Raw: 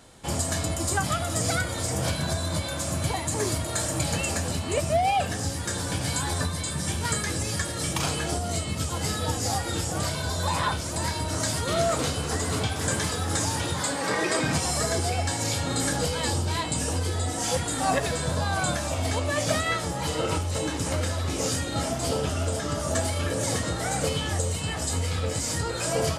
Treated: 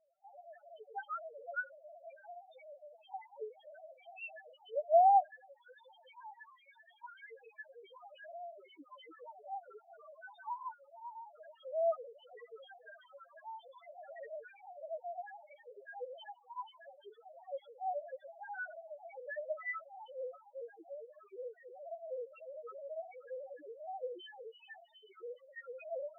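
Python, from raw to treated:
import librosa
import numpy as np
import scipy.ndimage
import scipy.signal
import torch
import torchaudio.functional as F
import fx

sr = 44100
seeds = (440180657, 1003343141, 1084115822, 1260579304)

y = fx.sine_speech(x, sr)
y = fx.spec_topn(y, sr, count=1)
y = y * librosa.db_to_amplitude(-8.5)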